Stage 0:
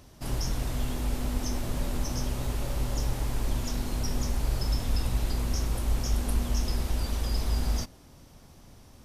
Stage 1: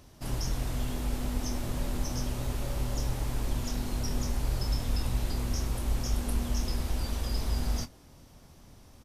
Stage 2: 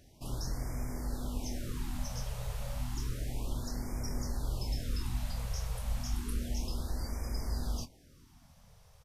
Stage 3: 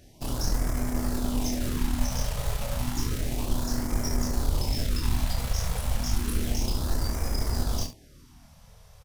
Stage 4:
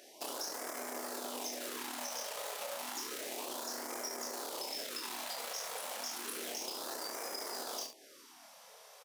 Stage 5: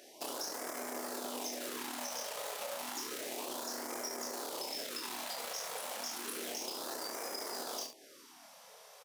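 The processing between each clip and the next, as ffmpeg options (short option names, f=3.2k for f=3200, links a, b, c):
-filter_complex "[0:a]asplit=2[a][b];[b]adelay=25,volume=-12dB[c];[a][c]amix=inputs=2:normalize=0,volume=-2dB"
-af "afftfilt=real='re*(1-between(b*sr/1024,280*pow(3500/280,0.5+0.5*sin(2*PI*0.31*pts/sr))/1.41,280*pow(3500/280,0.5+0.5*sin(2*PI*0.31*pts/sr))*1.41))':imag='im*(1-between(b*sr/1024,280*pow(3500/280,0.5+0.5*sin(2*PI*0.31*pts/sr))/1.41,280*pow(3500/280,0.5+0.5*sin(2*PI*0.31*pts/sr))*1.41))':win_size=1024:overlap=0.75,volume=-5dB"
-filter_complex "[0:a]asplit=2[a][b];[b]acrusher=bits=4:dc=4:mix=0:aa=0.000001,volume=-3dB[c];[a][c]amix=inputs=2:normalize=0,aecho=1:1:28|73:0.596|0.282,volume=5dB"
-af "highpass=f=390:w=0.5412,highpass=f=390:w=1.3066,acompressor=threshold=-44dB:ratio=3,volume=3.5dB"
-af "lowshelf=f=270:g=5"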